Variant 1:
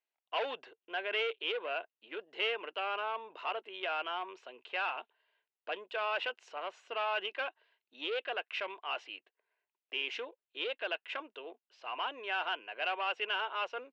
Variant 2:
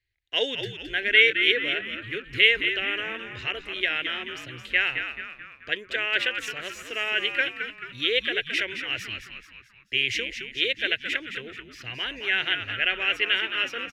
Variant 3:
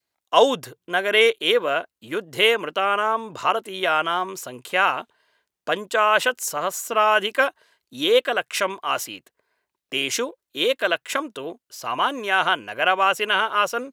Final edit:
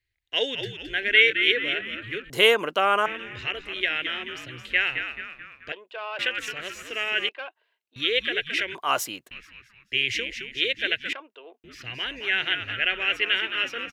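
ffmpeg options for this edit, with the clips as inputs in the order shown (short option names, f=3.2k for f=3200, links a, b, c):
-filter_complex "[2:a]asplit=2[a][b];[0:a]asplit=3[c][d][e];[1:a]asplit=6[f][g][h][i][j][k];[f]atrim=end=2.302[l];[a]atrim=start=2.298:end=3.062[m];[g]atrim=start=3.058:end=5.722[n];[c]atrim=start=5.718:end=6.192[o];[h]atrim=start=6.188:end=7.292[p];[d]atrim=start=7.288:end=7.962[q];[i]atrim=start=7.958:end=8.752[r];[b]atrim=start=8.748:end=9.312[s];[j]atrim=start=9.308:end=11.132[t];[e]atrim=start=11.128:end=11.642[u];[k]atrim=start=11.638[v];[l][m]acrossfade=d=0.004:c1=hsin:c2=hsin[w];[w][n]acrossfade=d=0.004:c1=hsin:c2=hsin[x];[x][o]acrossfade=d=0.004:c1=hsin:c2=hsin[y];[y][p]acrossfade=d=0.004:c1=hsin:c2=hsin[z];[z][q]acrossfade=d=0.004:c1=hsin:c2=hsin[aa];[aa][r]acrossfade=d=0.004:c1=hsin:c2=hsin[ab];[ab][s]acrossfade=d=0.004:c1=hsin:c2=hsin[ac];[ac][t]acrossfade=d=0.004:c1=hsin:c2=hsin[ad];[ad][u]acrossfade=d=0.004:c1=hsin:c2=hsin[ae];[ae][v]acrossfade=d=0.004:c1=hsin:c2=hsin"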